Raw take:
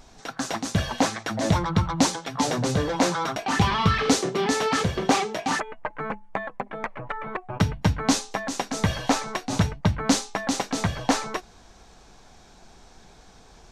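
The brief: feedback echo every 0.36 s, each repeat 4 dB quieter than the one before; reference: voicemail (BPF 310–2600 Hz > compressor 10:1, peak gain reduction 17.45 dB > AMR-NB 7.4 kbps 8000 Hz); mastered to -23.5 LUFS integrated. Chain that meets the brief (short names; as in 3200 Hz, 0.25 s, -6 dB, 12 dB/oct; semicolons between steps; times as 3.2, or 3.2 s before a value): BPF 310–2600 Hz; feedback echo 0.36 s, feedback 63%, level -4 dB; compressor 10:1, threshold -33 dBFS; gain +16.5 dB; AMR-NB 7.4 kbps 8000 Hz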